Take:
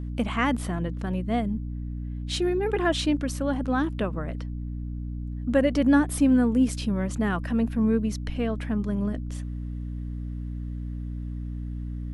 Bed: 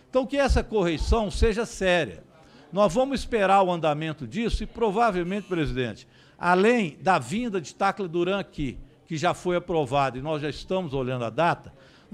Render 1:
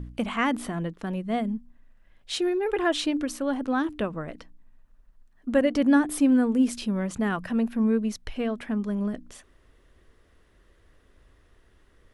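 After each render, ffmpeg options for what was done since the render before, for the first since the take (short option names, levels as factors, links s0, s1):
-af "bandreject=f=60:t=h:w=4,bandreject=f=120:t=h:w=4,bandreject=f=180:t=h:w=4,bandreject=f=240:t=h:w=4,bandreject=f=300:t=h:w=4"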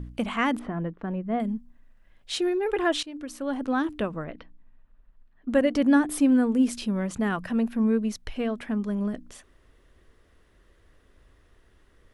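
-filter_complex "[0:a]asettb=1/sr,asplit=3[s0][s1][s2];[s0]atrim=end=0.594[s3];[s1]atrim=start=0.59:end=1.4,asetpts=PTS-STARTPTS,afade=t=in:d=0.004:c=qsin,afade=t=out:st=0.806:d=0.004:c=qsin,lowpass=1700[s4];[s2]atrim=start=1.396[s5];[s3][s4]acrossfade=d=0.004:c1=hsin:c2=qsin[s6];[s6][s5]acrossfade=d=0.004:c1=qsin:c2=hsin,asettb=1/sr,asplit=3[s7][s8][s9];[s7]atrim=end=4.244[s10];[s8]atrim=start=4.24:end=5.49,asetpts=PTS-STARTPTS,afade=t=in:d=0.004:c=qsin,afade=t=out:st=1.246:d=0.004:c=qsin,lowpass=f=3700:w=0.5412,lowpass=f=3700:w=1.3066[s11];[s9]atrim=start=5.486[s12];[s10][s11]acrossfade=d=0.004:c1=hsin:c2=qsin[s13];[s13][s12]acrossfade=d=0.004:c1=qsin:c2=hsin,asplit=2[s14][s15];[s14]atrim=end=3.03,asetpts=PTS-STARTPTS,afade=t=out:st=3.026:d=0.004:c=hsin:silence=0.105925[s16];[s15]atrim=start=3.03,asetpts=PTS-STARTPTS,afade=t=in:d=0.63:silence=0.105925[s17];[s16][s17]concat=n=2:v=0:a=1"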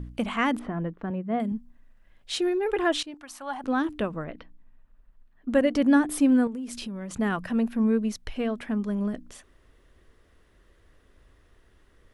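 -filter_complex "[0:a]asettb=1/sr,asplit=3[s0][s1][s2];[s0]atrim=end=1.104[s3];[s1]atrim=start=1.1:end=1.52,asetpts=PTS-STARTPTS,afade=t=in:d=0.004:c=qsin,afade=t=out:st=0.416:d=0.004:c=qsin,highpass=110[s4];[s2]atrim=start=1.516[s5];[s3][s4]acrossfade=d=0.004:c1=hsin:c2=qsin[s6];[s6][s5]acrossfade=d=0.004:c1=qsin:c2=hsin,asettb=1/sr,asplit=3[s7][s8][s9];[s7]atrim=end=3.144[s10];[s8]atrim=start=3.14:end=3.64,asetpts=PTS-STARTPTS,afade=t=in:d=0.004:c=qsin,afade=t=out:st=0.496:d=0.004:c=qsin,lowshelf=f=590:t=q:w=3:g=-10.5[s11];[s9]atrim=start=3.636[s12];[s10][s11]acrossfade=d=0.004:c1=hsin:c2=qsin[s13];[s13][s12]acrossfade=d=0.004:c1=qsin:c2=hsin,asettb=1/sr,asplit=3[s14][s15][s16];[s14]atrim=end=6.474[s17];[s15]atrim=start=6.47:end=7.11,asetpts=PTS-STARTPTS,afade=t=in:d=0.004:c=qsin,afade=t=out:st=0.636:d=0.004:c=qsin,acompressor=threshold=0.0282:ratio=10:attack=3.2:release=140:knee=1:detection=peak[s18];[s16]atrim=start=7.106[s19];[s17][s18]acrossfade=d=0.004:c1=hsin:c2=qsin[s20];[s20][s19]acrossfade=d=0.004:c1=qsin:c2=hsin"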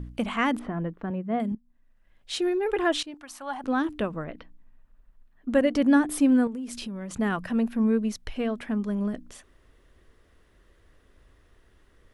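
-filter_complex "[0:a]asplit=2[s0][s1];[s0]atrim=end=1.55,asetpts=PTS-STARTPTS,afade=t=out:st=1.546:d=0.004:c=hsin:silence=0.11885[s2];[s1]atrim=start=1.55,asetpts=PTS-STARTPTS,afade=t=in:d=0.94:silence=0.11885[s3];[s2][s3]concat=n=2:v=0:a=1"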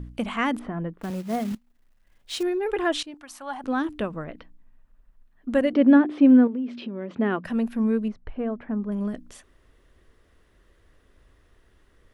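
-filter_complex "[0:a]asettb=1/sr,asplit=3[s0][s1][s2];[s0]atrim=end=1.014[s3];[s1]atrim=start=1.01:end=2.43,asetpts=PTS-STARTPTS,afade=t=in:d=0.004:c=qsin,afade=t=out:st=1.416:d=0.004:c=qsin,acrusher=bits=4:mode=log:mix=0:aa=0.000001[s4];[s2]atrim=start=2.426[s5];[s3][s4]acrossfade=d=0.004:c1=hsin:c2=qsin[s6];[s6][s5]acrossfade=d=0.004:c1=qsin:c2=hsin,asettb=1/sr,asplit=3[s7][s8][s9];[s7]atrim=end=5.734[s10];[s8]atrim=start=5.73:end=7.45,asetpts=PTS-STARTPTS,afade=t=in:d=0.004:c=qsin,afade=t=out:st=1.716:d=0.004:c=qsin,highpass=170,equalizer=f=250:t=q:w=4:g=6,equalizer=f=370:t=q:w=4:g=9,equalizer=f=560:t=q:w=4:g=5,lowpass=f=3400:w=0.5412,lowpass=f=3400:w=1.3066[s11];[s9]atrim=start=7.446[s12];[s10][s11]acrossfade=d=0.004:c1=hsin:c2=qsin[s13];[s13][s12]acrossfade=d=0.004:c1=qsin:c2=hsin,asettb=1/sr,asplit=3[s14][s15][s16];[s14]atrim=end=8.084[s17];[s15]atrim=start=8.08:end=8.92,asetpts=PTS-STARTPTS,afade=t=in:d=0.004:c=qsin,afade=t=out:st=0.836:d=0.004:c=qsin,lowpass=1300[s18];[s16]atrim=start=8.916[s19];[s17][s18]acrossfade=d=0.004:c1=hsin:c2=qsin[s20];[s20][s19]acrossfade=d=0.004:c1=qsin:c2=hsin"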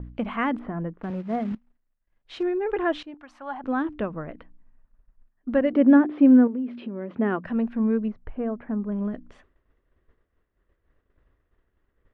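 -af "agate=range=0.0224:threshold=0.00355:ratio=3:detection=peak,lowpass=2100"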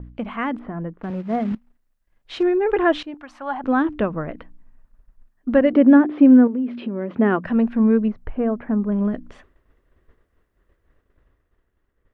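-af "alimiter=limit=0.282:level=0:latency=1:release=450,dynaudnorm=f=290:g=9:m=2.24"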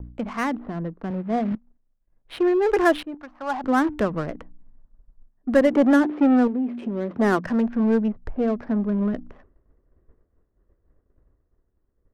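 -filter_complex "[0:a]acrossover=split=400|970[s0][s1][s2];[s0]asoftclip=type=tanh:threshold=0.119[s3];[s3][s1][s2]amix=inputs=3:normalize=0,adynamicsmooth=sensitivity=5.5:basefreq=900"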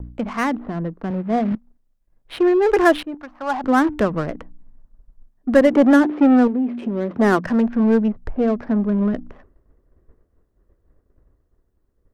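-af "volume=1.58"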